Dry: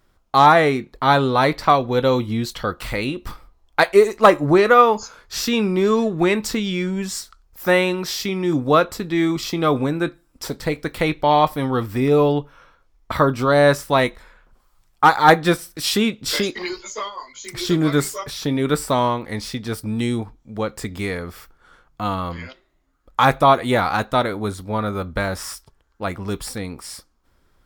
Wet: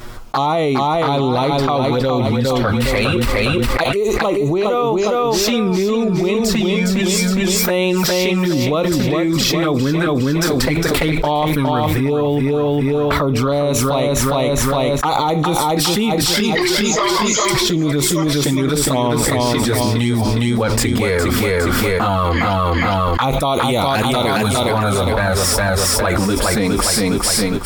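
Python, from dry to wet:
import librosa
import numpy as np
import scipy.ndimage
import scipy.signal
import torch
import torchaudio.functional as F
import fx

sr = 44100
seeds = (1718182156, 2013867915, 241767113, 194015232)

y = fx.high_shelf(x, sr, hz=3300.0, db=10.5, at=(23.33, 24.72))
y = fx.comb_fb(y, sr, f0_hz=260.0, decay_s=0.22, harmonics='all', damping=0.0, mix_pct=40, at=(26.18, 26.83))
y = fx.env_flanger(y, sr, rest_ms=8.5, full_db=-13.5)
y = fx.echo_feedback(y, sr, ms=410, feedback_pct=37, wet_db=-6)
y = fx.env_flatten(y, sr, amount_pct=100)
y = F.gain(torch.from_numpy(y), -8.0).numpy()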